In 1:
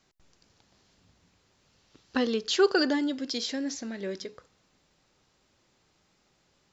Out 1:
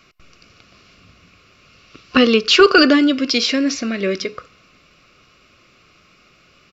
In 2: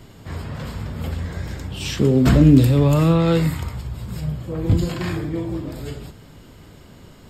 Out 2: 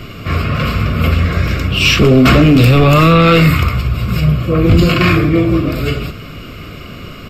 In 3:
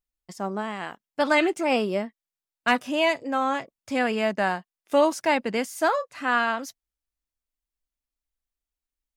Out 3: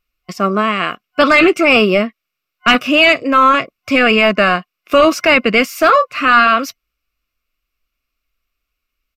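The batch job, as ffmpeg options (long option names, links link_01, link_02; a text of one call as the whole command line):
ffmpeg -i in.wav -af "aresample=32000,aresample=44100,superequalizer=9b=0.316:10b=2.24:12b=2.82:15b=0.447:16b=0.316,apsyclip=17.5dB,volume=-3.5dB" out.wav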